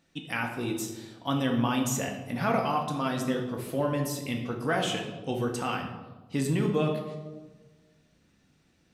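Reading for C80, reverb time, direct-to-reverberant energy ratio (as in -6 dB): 8.5 dB, 1.3 s, 1.5 dB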